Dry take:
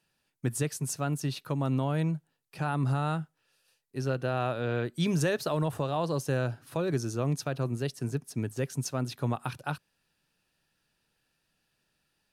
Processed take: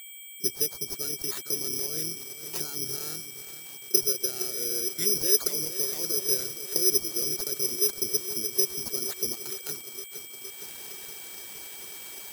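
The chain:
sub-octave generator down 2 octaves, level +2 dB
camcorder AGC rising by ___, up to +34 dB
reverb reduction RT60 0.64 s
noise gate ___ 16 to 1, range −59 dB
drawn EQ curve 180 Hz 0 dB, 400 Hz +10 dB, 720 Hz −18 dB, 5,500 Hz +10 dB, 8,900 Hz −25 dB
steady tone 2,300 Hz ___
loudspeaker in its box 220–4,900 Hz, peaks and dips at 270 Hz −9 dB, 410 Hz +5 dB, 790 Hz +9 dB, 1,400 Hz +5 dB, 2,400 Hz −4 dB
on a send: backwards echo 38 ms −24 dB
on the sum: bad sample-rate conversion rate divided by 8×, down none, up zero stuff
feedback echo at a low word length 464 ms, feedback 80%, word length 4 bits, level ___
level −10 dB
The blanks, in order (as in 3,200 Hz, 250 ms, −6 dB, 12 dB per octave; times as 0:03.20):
35 dB per second, −57 dBFS, −37 dBFS, −10.5 dB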